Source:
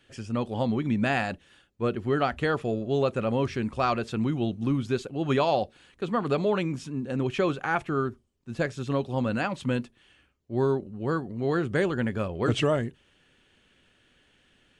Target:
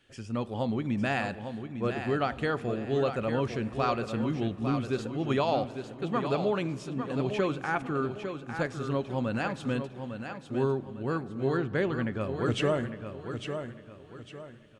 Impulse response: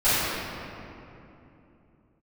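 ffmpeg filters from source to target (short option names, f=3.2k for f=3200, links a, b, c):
-filter_complex "[0:a]asettb=1/sr,asplit=3[a][b][c];[a]atrim=end=11.574[d];[b]atrim=start=11.57:end=12.21,asetpts=PTS-STARTPTS,afade=t=in:d=0.004:c=qsin,afade=t=out:st=0.636:d=0.004:c=qsin,lowpass=4.7k[e];[c]atrim=start=12.206[f];[d][e]acrossfade=d=0.004:c1=hsin:c2=qsin[g];[g][f]acrossfade=d=0.004:c1=qsin:c2=hsin,aecho=1:1:853|1706|2559|3412:0.398|0.135|0.046|0.0156,asplit=2[h][i];[1:a]atrim=start_sample=2205[j];[i][j]afir=irnorm=-1:irlink=0,volume=-36dB[k];[h][k]amix=inputs=2:normalize=0,volume=-3.5dB"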